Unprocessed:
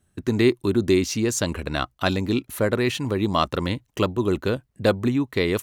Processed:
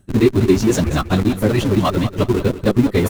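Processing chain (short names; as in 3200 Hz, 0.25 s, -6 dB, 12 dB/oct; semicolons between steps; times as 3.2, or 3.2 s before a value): reverb removal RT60 0.93 s; low shelf 490 Hz +9 dB; reverse; upward compressor, threshold -15 dBFS; reverse; plain phase-vocoder stretch 0.55×; in parallel at -8 dB: Schmitt trigger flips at -25 dBFS; on the sum: feedback echo 0.19 s, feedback 26%, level -12 dB; gain +3 dB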